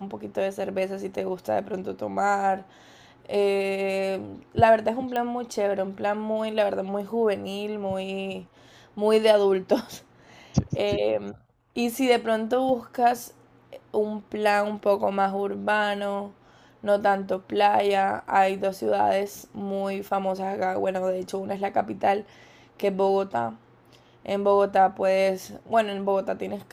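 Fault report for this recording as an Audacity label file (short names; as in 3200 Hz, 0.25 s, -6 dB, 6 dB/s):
5.160000	5.160000	pop -16 dBFS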